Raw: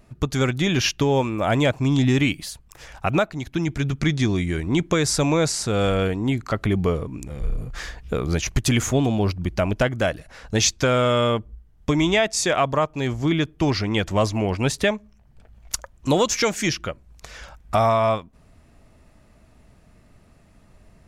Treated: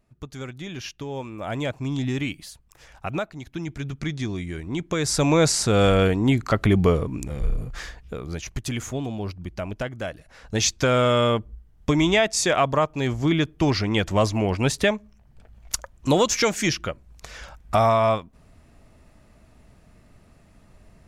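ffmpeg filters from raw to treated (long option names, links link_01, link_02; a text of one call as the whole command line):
ffmpeg -i in.wav -af "volume=12dB,afade=type=in:start_time=1.01:duration=0.72:silence=0.473151,afade=type=in:start_time=4.86:duration=0.63:silence=0.298538,afade=type=out:start_time=7.27:duration=0.88:silence=0.251189,afade=type=in:start_time=10.12:duration=0.86:silence=0.354813" out.wav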